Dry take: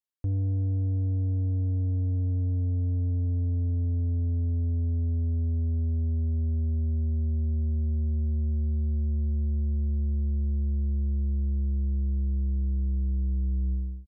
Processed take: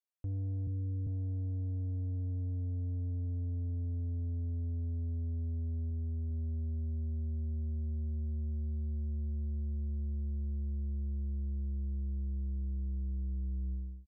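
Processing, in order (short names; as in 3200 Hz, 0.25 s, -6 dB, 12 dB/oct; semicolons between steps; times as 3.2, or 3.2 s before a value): 0.67–1.07 steep low-pass 510 Hz 96 dB/oct; 5.9–6.31 notch comb 300 Hz; gain -9 dB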